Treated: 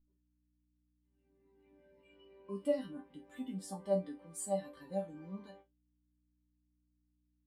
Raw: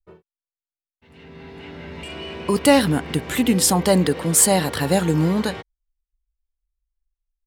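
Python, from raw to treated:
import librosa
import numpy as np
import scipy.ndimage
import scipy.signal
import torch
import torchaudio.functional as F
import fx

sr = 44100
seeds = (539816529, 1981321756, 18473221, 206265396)

y = fx.doubler(x, sr, ms=48.0, db=-13.5)
y = fx.add_hum(y, sr, base_hz=60, snr_db=14)
y = fx.resonator_bank(y, sr, root=55, chord='sus4', decay_s=0.26)
y = fx.dynamic_eq(y, sr, hz=1100.0, q=5.2, threshold_db=-58.0, ratio=4.0, max_db=5)
y = fx.spectral_expand(y, sr, expansion=1.5)
y = y * 10.0 ** (-5.5 / 20.0)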